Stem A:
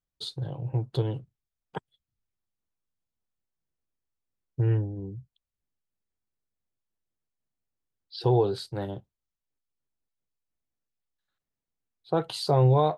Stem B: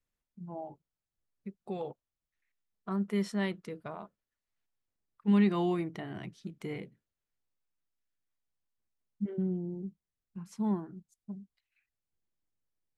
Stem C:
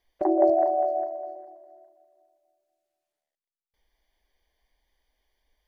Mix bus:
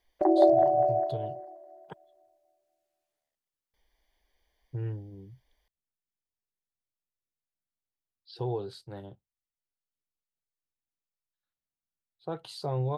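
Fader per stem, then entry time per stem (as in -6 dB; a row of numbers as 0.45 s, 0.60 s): -10.0 dB, mute, 0.0 dB; 0.15 s, mute, 0.00 s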